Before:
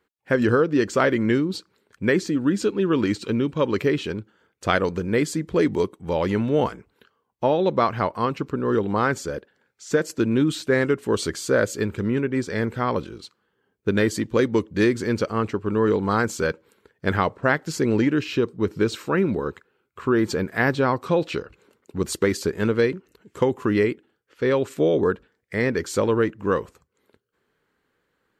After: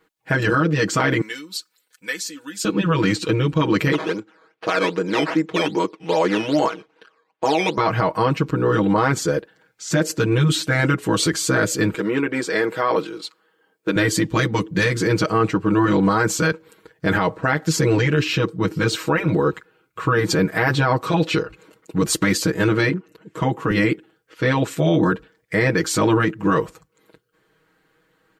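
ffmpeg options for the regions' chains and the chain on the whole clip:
-filter_complex "[0:a]asettb=1/sr,asplit=3[a][b][c];[a]atrim=end=1.214[d];[b]atrim=start=1.21:end=2.65,asetpts=PTS-STARTPTS,afade=t=in:d=0.004:c=qsin,afade=t=out:st=1.436:d=0.004:c=qsin,aderivative,aecho=1:1:4:0.51,atrim=end_sample=63504[e];[c]atrim=start=2.646[f];[d][e]acrossfade=d=0.004:c1=hsin:c2=qsin[g];[g][f]acrossfade=d=0.004:c1=qsin:c2=hsin,asettb=1/sr,asplit=3[h][i][j];[h]atrim=end=3.924[k];[i]atrim=start=3.92:end=7.78,asetpts=PTS-STARTPTS,afade=t=in:d=0.004:c=qsin,afade=t=out:st=3.856:d=0.004:c=qsin,acrusher=samples=11:mix=1:aa=0.000001:lfo=1:lforange=11:lforate=2.5,highpass=330,lowpass=3.4k[l];[j]atrim=start=7.776[m];[k][l]acrossfade=d=0.004:c1=hsin:c2=qsin[n];[n][m]acrossfade=d=0.004:c1=qsin:c2=hsin,asettb=1/sr,asplit=3[o][p][q];[o]atrim=end=11.944[r];[p]atrim=start=11.94:end=13.96,asetpts=PTS-STARTPTS,afade=t=in:d=0.004:c=qsin,afade=t=out:st=2.016:d=0.004:c=qsin,highpass=330,bandreject=f=6k:w=14[s];[q]atrim=start=13.956[t];[r][s]acrossfade=d=0.004:c1=hsin:c2=qsin[u];[u][t]acrossfade=d=0.004:c1=qsin:c2=hsin,asettb=1/sr,asplit=3[v][w][x];[v]atrim=end=22.894[y];[w]atrim=start=22.89:end=23.71,asetpts=PTS-STARTPTS,afade=t=in:d=0.004:c=qsin,afade=t=out:st=0.816:d=0.004:c=qsin,highpass=110,highshelf=f=3k:g=-8[z];[x]atrim=start=23.706[aa];[y][z]acrossfade=d=0.004:c1=hsin:c2=qsin[ab];[ab][aa]acrossfade=d=0.004:c1=qsin:c2=hsin,afftfilt=real='re*lt(hypot(re,im),0.631)':imag='im*lt(hypot(re,im),0.631)':win_size=1024:overlap=0.75,aecho=1:1:6.3:0.98,alimiter=limit=-15dB:level=0:latency=1:release=24,volume=6dB"

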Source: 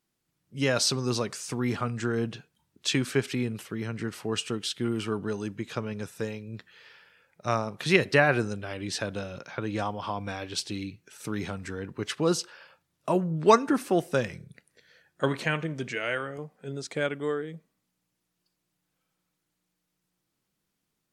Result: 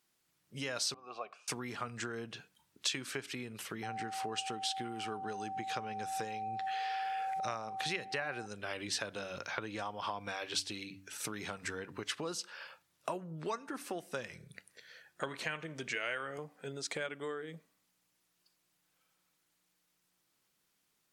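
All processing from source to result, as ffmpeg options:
-filter_complex "[0:a]asettb=1/sr,asplit=3[a][b][c];[a]atrim=end=0.944[d];[b]atrim=start=0.94:end=1.48,asetpts=PTS-STARTPTS,afade=t=in:d=0.004:c=qsin,afade=t=out:st=0.536:d=0.004:c=qsin,asplit=3[e][f][g];[e]bandpass=f=730:t=q:w=8,volume=0dB[h];[f]bandpass=f=1.09k:t=q:w=8,volume=-6dB[i];[g]bandpass=f=2.44k:t=q:w=8,volume=-9dB[j];[h][i][j]amix=inputs=3:normalize=0,bass=f=250:g=-1,treble=f=4k:g=-10[k];[c]atrim=start=1.476[l];[d][k]acrossfade=d=0.004:c1=hsin:c2=qsin[m];[m][l]acrossfade=d=0.004:c1=qsin:c2=hsin,asettb=1/sr,asplit=3[n][o][p];[n]atrim=end=3.834[q];[o]atrim=start=3.83:end=8.46,asetpts=PTS-STARTPTS,afade=t=in:d=0.004:c=qsin,afade=t=out:st=4.626:d=0.004:c=qsin,acompressor=mode=upward:threshold=-35dB:ratio=2.5:attack=3.2:release=140:knee=2.83:detection=peak,aeval=exprs='val(0)+0.0224*sin(2*PI*770*n/s)':c=same,lowpass=11k[r];[p]atrim=start=8.456[s];[q][r]acrossfade=d=0.004:c1=hsin:c2=qsin[t];[t][s]acrossfade=d=0.004:c1=qsin:c2=hsin,acompressor=threshold=-36dB:ratio=8,lowshelf=f=420:g=-11.5,bandreject=f=96.42:t=h:w=4,bandreject=f=192.84:t=h:w=4,bandreject=f=289.26:t=h:w=4,volume=4.5dB"

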